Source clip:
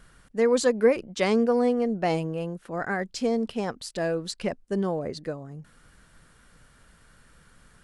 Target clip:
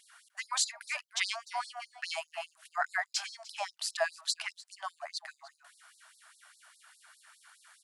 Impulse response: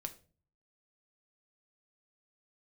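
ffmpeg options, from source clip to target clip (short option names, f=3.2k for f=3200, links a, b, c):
-af "aecho=1:1:300:0.112,afftfilt=real='re*gte(b*sr/1024,590*pow(3900/590,0.5+0.5*sin(2*PI*4.9*pts/sr)))':imag='im*gte(b*sr/1024,590*pow(3900/590,0.5+0.5*sin(2*PI*4.9*pts/sr)))':win_size=1024:overlap=0.75,volume=3dB"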